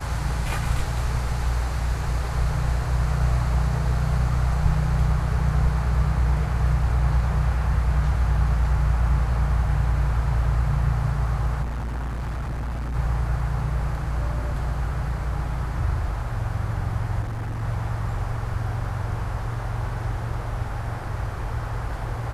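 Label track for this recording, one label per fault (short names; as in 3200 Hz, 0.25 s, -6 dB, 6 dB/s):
11.620000	12.960000	clipped -25.5 dBFS
17.210000	17.630000	clipped -25.5 dBFS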